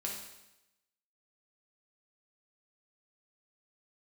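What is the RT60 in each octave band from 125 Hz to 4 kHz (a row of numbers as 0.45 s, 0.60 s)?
0.90 s, 0.90 s, 0.95 s, 0.90 s, 0.90 s, 0.90 s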